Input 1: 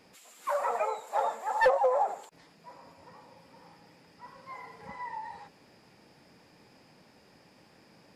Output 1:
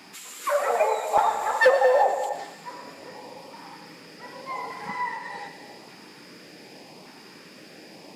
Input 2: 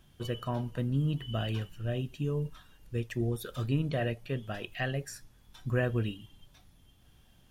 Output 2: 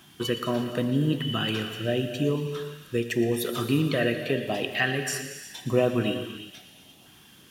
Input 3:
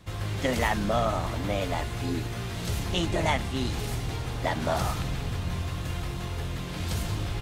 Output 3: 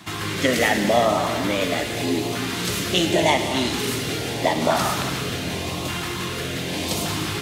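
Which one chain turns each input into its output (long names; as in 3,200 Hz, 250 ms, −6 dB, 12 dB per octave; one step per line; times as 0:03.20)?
high-pass filter 220 Hz 12 dB per octave
in parallel at 0 dB: downward compressor, threshold −41 dBFS
on the sum: auto-filter notch saw up 0.85 Hz 480–1,800 Hz
floating-point word with a short mantissa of 6 bits
on a send: delay with a high-pass on its return 116 ms, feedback 75%, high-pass 1,700 Hz, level −14.5 dB
on the sum: reverb whose tail is shaped and stops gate 400 ms flat, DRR 7 dB
level +8 dB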